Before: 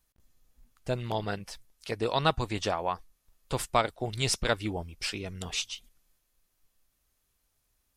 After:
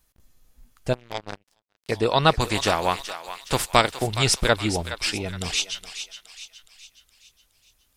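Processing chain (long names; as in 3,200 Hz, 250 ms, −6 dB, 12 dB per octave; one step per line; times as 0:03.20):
0:02.39–0:04.02: compressing power law on the bin magnitudes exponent 0.66
feedback echo with a high-pass in the loop 418 ms, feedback 49%, high-pass 960 Hz, level −9.5 dB
0:00.93–0:01.89: power curve on the samples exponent 3
level +7.5 dB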